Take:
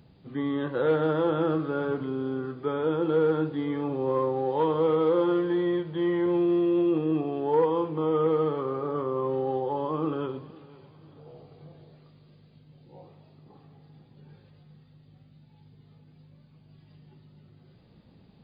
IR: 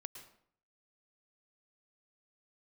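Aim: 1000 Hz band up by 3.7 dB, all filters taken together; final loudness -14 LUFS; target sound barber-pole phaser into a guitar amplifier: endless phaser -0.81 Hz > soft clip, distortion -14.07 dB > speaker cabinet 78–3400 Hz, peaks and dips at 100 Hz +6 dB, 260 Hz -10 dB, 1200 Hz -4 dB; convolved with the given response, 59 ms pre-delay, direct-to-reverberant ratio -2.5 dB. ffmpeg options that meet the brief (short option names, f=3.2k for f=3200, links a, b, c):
-filter_complex "[0:a]equalizer=f=1k:t=o:g=6,asplit=2[a][b];[1:a]atrim=start_sample=2205,adelay=59[c];[b][c]afir=irnorm=-1:irlink=0,volume=7dB[d];[a][d]amix=inputs=2:normalize=0,asplit=2[e][f];[f]afreqshift=-0.81[g];[e][g]amix=inputs=2:normalize=1,asoftclip=threshold=-18.5dB,highpass=78,equalizer=f=100:t=q:w=4:g=6,equalizer=f=260:t=q:w=4:g=-10,equalizer=f=1.2k:t=q:w=4:g=-4,lowpass=f=3.4k:w=0.5412,lowpass=f=3.4k:w=1.3066,volume=14dB"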